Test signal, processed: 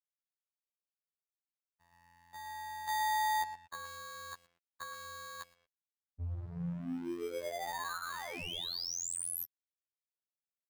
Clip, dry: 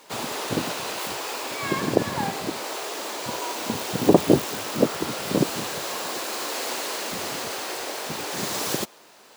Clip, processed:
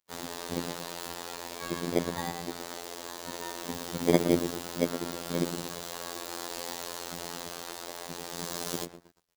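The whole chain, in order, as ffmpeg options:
-filter_complex "[0:a]acrossover=split=460|2300[a][b][c];[b]acrusher=samples=16:mix=1:aa=0.000001[d];[a][d][c]amix=inputs=3:normalize=0,aeval=exprs='val(0)+0.00112*(sin(2*PI*60*n/s)+sin(2*PI*2*60*n/s)/2+sin(2*PI*3*60*n/s)/3+sin(2*PI*4*60*n/s)/4+sin(2*PI*5*60*n/s)/5)':c=same,asplit=2[e][f];[f]adelay=116,lowpass=f=1.3k:p=1,volume=-8dB,asplit=2[g][h];[h]adelay=116,lowpass=f=1.3k:p=1,volume=0.46,asplit=2[i][j];[j]adelay=116,lowpass=f=1.3k:p=1,volume=0.46,asplit=2[k][l];[l]adelay=116,lowpass=f=1.3k:p=1,volume=0.46,asplit=2[m][n];[n]adelay=116,lowpass=f=1.3k:p=1,volume=0.46[o];[e][g][i][k][m][o]amix=inputs=6:normalize=0,aeval=exprs='sgn(val(0))*max(abs(val(0))-0.00708,0)':c=same,afftfilt=real='hypot(re,im)*cos(PI*b)':imag='0':win_size=2048:overlap=0.75,volume=-3.5dB"

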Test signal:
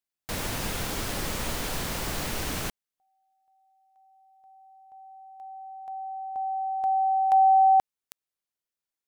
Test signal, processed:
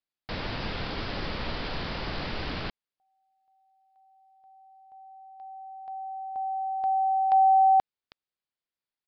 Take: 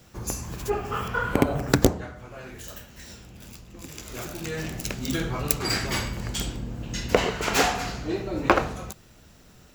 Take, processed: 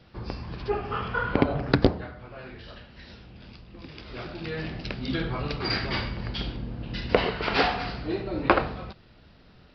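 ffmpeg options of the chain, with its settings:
-af "aresample=11025,aresample=44100,volume=-1dB"

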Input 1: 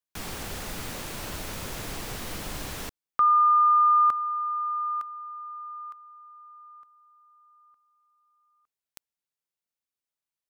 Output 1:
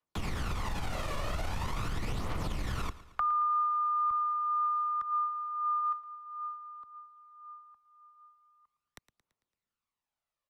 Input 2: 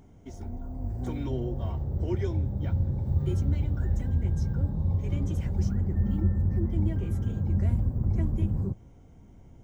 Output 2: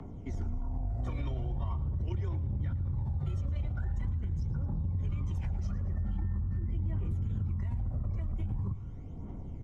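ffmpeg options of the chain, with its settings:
-filter_complex "[0:a]aresample=32000,aresample=44100,acrossover=split=140|1100[a][b][c];[a]acompressor=threshold=-33dB:ratio=2[d];[b]acompressor=threshold=-44dB:ratio=2.5[e];[c]acompressor=threshold=-41dB:ratio=2[f];[d][e][f]amix=inputs=3:normalize=0,aemphasis=mode=reproduction:type=75kf,aphaser=in_gain=1:out_gain=1:delay=1.8:decay=0.52:speed=0.43:type=triangular,acrossover=split=180|570|1200[g][h][i][j];[h]alimiter=level_in=16.5dB:limit=-24dB:level=0:latency=1,volume=-16.5dB[k];[g][k][i][j]amix=inputs=4:normalize=0,acompressor=threshold=-37dB:ratio=6:attack=22:release=26:knee=1:detection=rms,equalizer=f=1.1k:w=2.6:g=5,bandreject=f=1.6k:w=12,aecho=1:1:112|224|336|448|560:0.141|0.0749|0.0397|0.021|0.0111,volume=4dB"

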